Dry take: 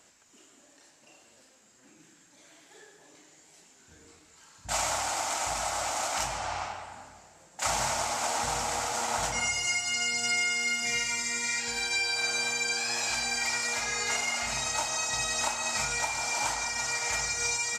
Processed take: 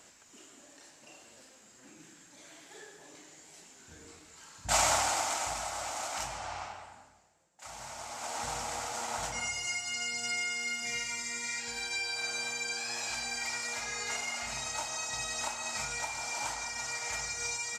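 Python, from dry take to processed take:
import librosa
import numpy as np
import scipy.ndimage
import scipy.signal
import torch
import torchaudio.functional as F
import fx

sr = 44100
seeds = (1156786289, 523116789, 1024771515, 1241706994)

y = fx.gain(x, sr, db=fx.line((4.93, 3.0), (5.68, -6.0), (6.85, -6.0), (7.62, -19.0), (8.44, -6.0)))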